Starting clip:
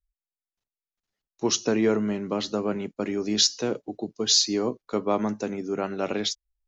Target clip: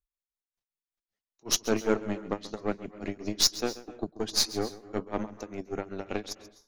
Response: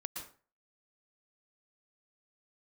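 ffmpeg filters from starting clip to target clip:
-filter_complex "[0:a]tremolo=f=5.2:d=0.97,aeval=exprs='0.376*(cos(1*acos(clip(val(0)/0.376,-1,1)))-cos(1*PI/2))+0.0211*(cos(7*acos(clip(val(0)/0.376,-1,1)))-cos(7*PI/2))+0.0266*(cos(8*acos(clip(val(0)/0.376,-1,1)))-cos(8*PI/2))':c=same,asplit=2[s0][s1];[1:a]atrim=start_sample=2205,adelay=134[s2];[s1][s2]afir=irnorm=-1:irlink=0,volume=0.211[s3];[s0][s3]amix=inputs=2:normalize=0"

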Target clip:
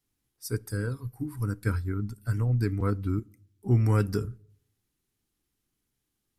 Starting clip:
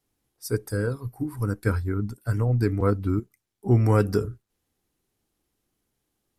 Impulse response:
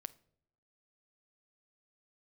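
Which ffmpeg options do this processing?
-filter_complex "[0:a]equalizer=f=610:t=o:w=1.5:g=-8.5,asplit=2[s0][s1];[1:a]atrim=start_sample=2205[s2];[s1][s2]afir=irnorm=-1:irlink=0,volume=0.891[s3];[s0][s3]amix=inputs=2:normalize=0,volume=0.501"

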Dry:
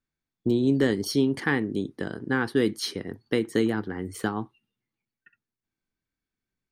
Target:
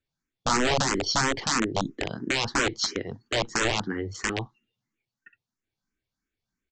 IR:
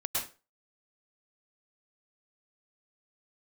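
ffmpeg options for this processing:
-filter_complex "[0:a]highshelf=f=5500:g=4,aresample=16000,aeval=exprs='(mod(8.91*val(0)+1,2)-1)/8.91':c=same,aresample=44100,asplit=2[s0][s1];[s1]afreqshift=3[s2];[s0][s2]amix=inputs=2:normalize=1,volume=1.68"

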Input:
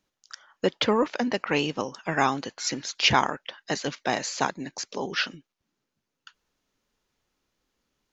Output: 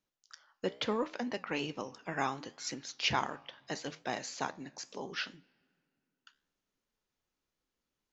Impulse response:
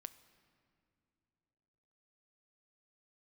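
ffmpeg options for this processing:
-filter_complex "[0:a]flanger=delay=7.7:depth=9:regen=-79:speed=0.73:shape=triangular,asplit=2[s0][s1];[1:a]atrim=start_sample=2205[s2];[s1][s2]afir=irnorm=-1:irlink=0,volume=0.501[s3];[s0][s3]amix=inputs=2:normalize=0,volume=0.398"

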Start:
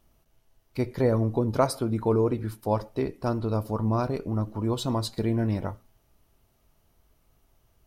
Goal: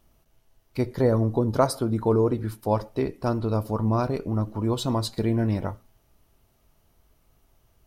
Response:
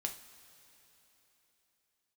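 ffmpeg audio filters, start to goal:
-filter_complex "[0:a]asettb=1/sr,asplit=3[s0][s1][s2];[s0]atrim=end=0.814[s3];[s1]atrim=start=0.81:end=2.44,asetpts=PTS-STARTPTS,afade=t=in:d=0.004:c=qsin,afade=t=out:st=1.626:d=0.004:c=qsin,equalizer=f=2400:t=o:w=0.38:g=-6.5[s4];[s2]atrim=start=2.436[s5];[s3][s4]acrossfade=d=0.004:c1=hsin:c2=qsin[s6];[s6][s5]acrossfade=d=0.004:c1=qsin:c2=hsin,volume=1.26"

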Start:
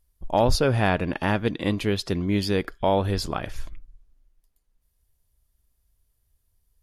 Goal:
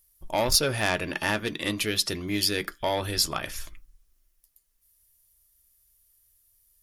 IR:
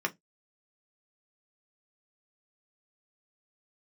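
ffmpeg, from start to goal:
-filter_complex "[0:a]asoftclip=type=tanh:threshold=0.211,crystalizer=i=6.5:c=0,asplit=2[s0][s1];[1:a]atrim=start_sample=2205[s2];[s1][s2]afir=irnorm=-1:irlink=0,volume=0.355[s3];[s0][s3]amix=inputs=2:normalize=0,volume=0.398"

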